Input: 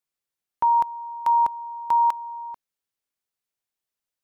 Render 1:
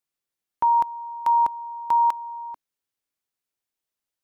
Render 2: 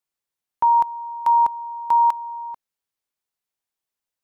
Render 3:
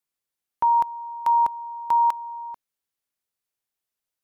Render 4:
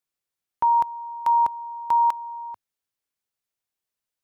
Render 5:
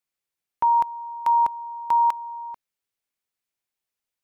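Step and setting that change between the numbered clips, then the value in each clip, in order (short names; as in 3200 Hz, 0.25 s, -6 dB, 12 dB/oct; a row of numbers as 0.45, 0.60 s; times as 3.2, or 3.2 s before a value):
bell, frequency: 300, 910, 12000, 99, 2300 Hz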